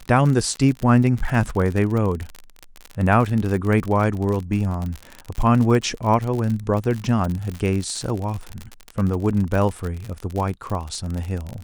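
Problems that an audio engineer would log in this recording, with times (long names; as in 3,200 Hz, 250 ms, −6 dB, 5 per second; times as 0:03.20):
surface crackle 49 per second −24 dBFS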